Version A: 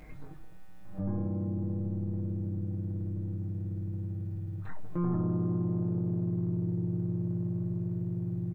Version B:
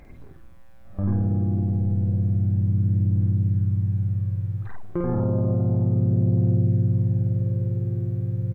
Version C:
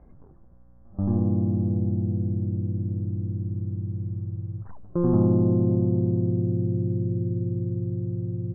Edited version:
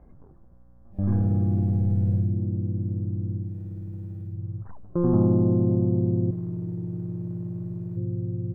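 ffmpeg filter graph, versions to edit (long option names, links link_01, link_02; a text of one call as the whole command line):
ffmpeg -i take0.wav -i take1.wav -i take2.wav -filter_complex "[0:a]asplit=2[link_01][link_02];[2:a]asplit=4[link_03][link_04][link_05][link_06];[link_03]atrim=end=1.14[link_07];[1:a]atrim=start=0.9:end=2.39[link_08];[link_04]atrim=start=2.15:end=3.59[link_09];[link_01]atrim=start=3.35:end=4.44[link_10];[link_05]atrim=start=4.2:end=6.312[link_11];[link_02]atrim=start=6.308:end=7.972[link_12];[link_06]atrim=start=7.968[link_13];[link_07][link_08]acrossfade=duration=0.24:curve1=tri:curve2=tri[link_14];[link_14][link_09]acrossfade=duration=0.24:curve1=tri:curve2=tri[link_15];[link_15][link_10]acrossfade=duration=0.24:curve1=tri:curve2=tri[link_16];[link_16][link_11]acrossfade=duration=0.24:curve1=tri:curve2=tri[link_17];[link_17][link_12]acrossfade=duration=0.004:curve1=hsin:curve2=hsin[link_18];[link_18][link_13]acrossfade=duration=0.004:curve1=hsin:curve2=hsin" out.wav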